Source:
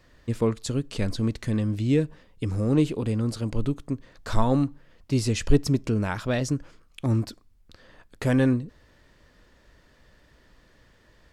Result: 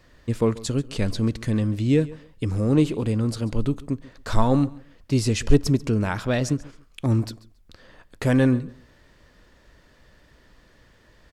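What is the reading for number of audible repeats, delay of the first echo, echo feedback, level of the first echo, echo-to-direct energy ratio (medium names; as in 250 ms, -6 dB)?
2, 138 ms, 21%, -20.0 dB, -20.0 dB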